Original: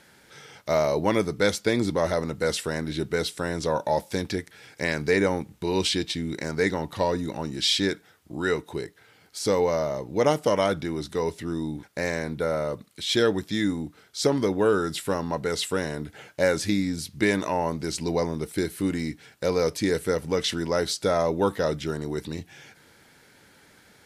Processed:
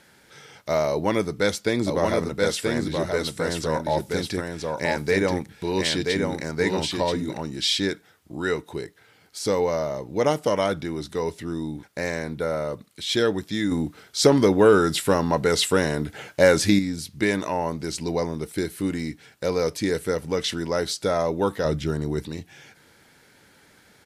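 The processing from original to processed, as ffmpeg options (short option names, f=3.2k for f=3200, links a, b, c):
-filter_complex "[0:a]asplit=3[a][b][c];[a]afade=t=out:st=1.86:d=0.02[d];[b]aecho=1:1:980:0.668,afade=t=in:st=1.86:d=0.02,afade=t=out:st=7.38:d=0.02[e];[c]afade=t=in:st=7.38:d=0.02[f];[d][e][f]amix=inputs=3:normalize=0,asettb=1/sr,asplit=3[g][h][i];[g]atrim=end=13.714[j];[h]atrim=start=13.71:end=16.79,asetpts=PTS-STARTPTS,afade=t=in:d=0.004:c=qsin,afade=t=out:st=3.076:d=0.004:c=qsin,acontrast=66[k];[i]atrim=start=16.786[l];[j][k]acrossfade=d=0.004:c1=hsin:c2=qsin[m];[m][l]acrossfade=d=0.004:c1=qsin:c2=hsin,asettb=1/sr,asplit=3[n][o][p];[n]atrim=end=21.654[q];[o]atrim=start=21.65:end=22.25,asetpts=PTS-STARTPTS,afade=t=in:d=0.004:c=qsin,afade=t=out:st=0.596:d=0.004:c=qsin,lowshelf=f=200:g=10[r];[p]atrim=start=22.246[s];[q][r]acrossfade=d=0.004:c1=hsin:c2=qsin[t];[t][s]acrossfade=d=0.004:c1=qsin:c2=hsin"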